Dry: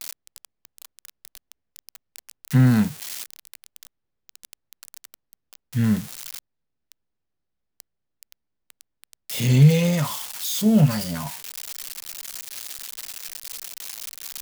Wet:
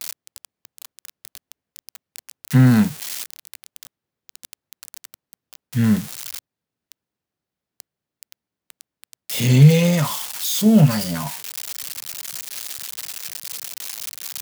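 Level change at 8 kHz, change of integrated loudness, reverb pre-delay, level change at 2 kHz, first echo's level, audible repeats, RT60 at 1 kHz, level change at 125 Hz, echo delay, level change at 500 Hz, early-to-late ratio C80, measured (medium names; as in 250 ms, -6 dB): +4.0 dB, +3.5 dB, no reverb, +4.0 dB, no echo, no echo, no reverb, +3.0 dB, no echo, +4.0 dB, no reverb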